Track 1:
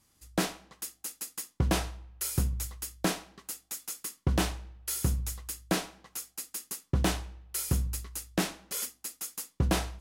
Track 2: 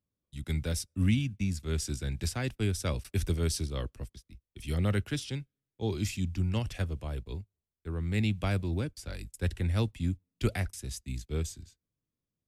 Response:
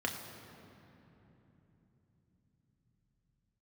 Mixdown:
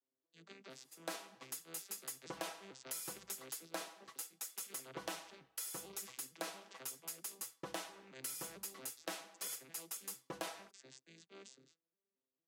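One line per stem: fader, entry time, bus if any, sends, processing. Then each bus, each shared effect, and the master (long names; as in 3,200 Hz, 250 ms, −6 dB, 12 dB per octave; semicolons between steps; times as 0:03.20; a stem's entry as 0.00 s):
−4.0 dB, 0.70 s, no send, Chebyshev high-pass filter 560 Hz, order 2; comb filter 6.1 ms, depth 90%
−13.5 dB, 0.00 s, no send, vocoder with an arpeggio as carrier major triad, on C3, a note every 225 ms; high-pass filter 300 Hz 24 dB per octave; every bin compressed towards the loudest bin 2 to 1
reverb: not used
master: downward compressor 4 to 1, threshold −42 dBFS, peak gain reduction 12.5 dB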